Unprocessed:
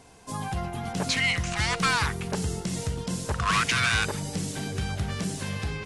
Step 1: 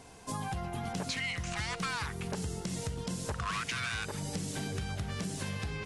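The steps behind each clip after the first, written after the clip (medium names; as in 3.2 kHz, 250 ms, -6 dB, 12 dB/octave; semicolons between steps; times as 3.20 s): compression, threshold -33 dBFS, peak gain reduction 12.5 dB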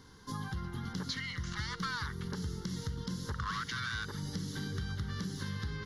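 static phaser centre 2.5 kHz, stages 6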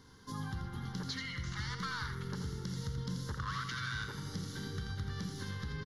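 delay 84 ms -7 dB; on a send at -11 dB: reverberation RT60 3.2 s, pre-delay 38 ms; on the sum: trim -3 dB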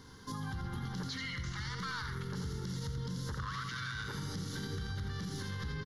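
peak limiter -36 dBFS, peak gain reduction 8.5 dB; trim +5 dB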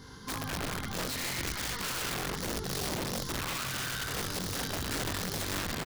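chorus voices 2, 1.2 Hz, delay 21 ms, depth 3 ms; speakerphone echo 290 ms, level -15 dB; integer overflow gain 37.5 dB; trim +8.5 dB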